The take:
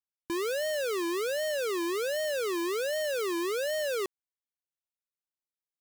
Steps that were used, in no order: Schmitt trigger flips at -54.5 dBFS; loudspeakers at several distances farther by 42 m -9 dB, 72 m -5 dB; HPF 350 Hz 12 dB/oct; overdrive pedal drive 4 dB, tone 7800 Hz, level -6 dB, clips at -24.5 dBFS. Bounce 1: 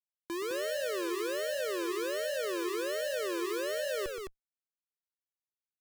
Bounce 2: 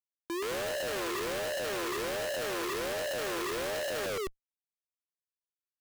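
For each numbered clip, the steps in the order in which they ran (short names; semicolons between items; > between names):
HPF > overdrive pedal > Schmitt trigger > loudspeakers at several distances; loudspeakers at several distances > overdrive pedal > HPF > Schmitt trigger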